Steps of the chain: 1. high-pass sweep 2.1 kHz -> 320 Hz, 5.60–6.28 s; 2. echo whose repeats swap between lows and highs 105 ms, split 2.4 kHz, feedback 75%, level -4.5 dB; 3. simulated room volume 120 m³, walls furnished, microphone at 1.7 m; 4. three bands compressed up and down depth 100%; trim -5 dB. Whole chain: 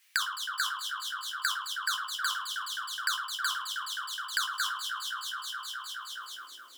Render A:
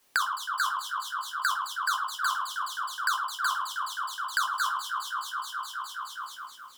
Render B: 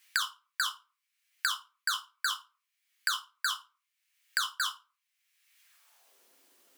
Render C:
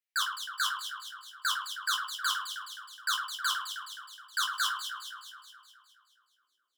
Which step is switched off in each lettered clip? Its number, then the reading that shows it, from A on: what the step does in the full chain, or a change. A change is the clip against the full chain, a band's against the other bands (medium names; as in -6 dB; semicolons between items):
1, 1 kHz band +7.5 dB; 2, momentary loudness spread change -2 LU; 4, crest factor change -3.5 dB